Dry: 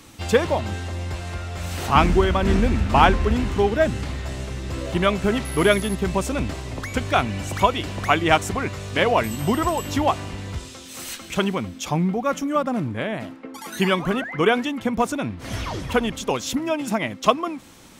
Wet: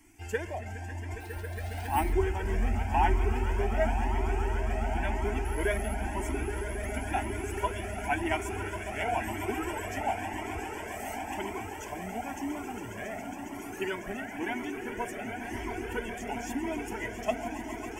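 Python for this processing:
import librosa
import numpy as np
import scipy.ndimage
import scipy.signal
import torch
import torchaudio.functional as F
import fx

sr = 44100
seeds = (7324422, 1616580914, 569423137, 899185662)

p1 = fx.spec_quant(x, sr, step_db=15)
p2 = fx.peak_eq(p1, sr, hz=66.0, db=-6.0, octaves=0.2)
p3 = fx.fixed_phaser(p2, sr, hz=790.0, stages=8)
p4 = p3 + fx.echo_swell(p3, sr, ms=137, loudest=8, wet_db=-12.5, dry=0)
p5 = fx.resample_bad(p4, sr, factor=4, down='none', up='hold', at=(1.2, 2.13))
p6 = fx.comb_cascade(p5, sr, direction='rising', hz=0.96)
y = p6 * librosa.db_to_amplitude(-5.0)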